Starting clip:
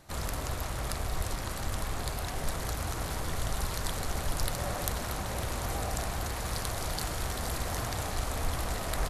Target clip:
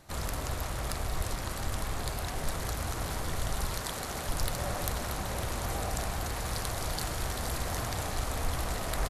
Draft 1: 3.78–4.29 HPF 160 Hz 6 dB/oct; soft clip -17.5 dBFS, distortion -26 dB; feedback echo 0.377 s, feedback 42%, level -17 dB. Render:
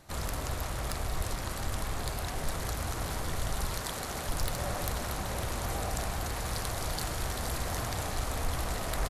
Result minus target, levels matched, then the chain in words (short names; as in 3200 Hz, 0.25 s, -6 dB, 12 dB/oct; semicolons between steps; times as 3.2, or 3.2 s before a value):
soft clip: distortion +8 dB
3.78–4.29 HPF 160 Hz 6 dB/oct; soft clip -11.5 dBFS, distortion -35 dB; feedback echo 0.377 s, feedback 42%, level -17 dB